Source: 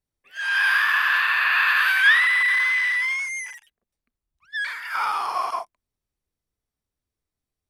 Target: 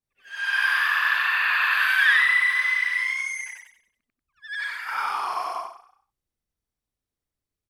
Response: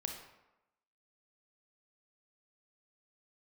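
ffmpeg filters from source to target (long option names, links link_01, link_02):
-filter_complex "[0:a]afftfilt=real='re':imag='-im':win_size=8192:overlap=0.75,asplit=5[link_01][link_02][link_03][link_04][link_05];[link_02]adelay=93,afreqshift=30,volume=-11.5dB[link_06];[link_03]adelay=186,afreqshift=60,volume=-19.9dB[link_07];[link_04]adelay=279,afreqshift=90,volume=-28.3dB[link_08];[link_05]adelay=372,afreqshift=120,volume=-36.7dB[link_09];[link_01][link_06][link_07][link_08][link_09]amix=inputs=5:normalize=0,volume=2dB"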